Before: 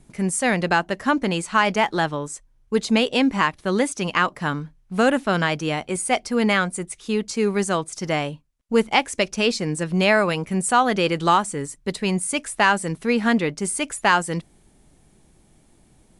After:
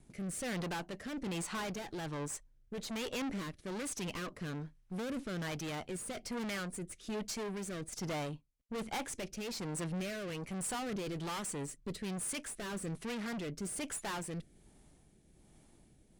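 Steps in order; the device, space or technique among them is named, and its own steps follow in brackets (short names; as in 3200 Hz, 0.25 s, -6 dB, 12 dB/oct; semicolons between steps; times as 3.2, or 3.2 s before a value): overdriven rotary cabinet (tube stage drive 32 dB, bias 0.55; rotary speaker horn 1.2 Hz); gain -3 dB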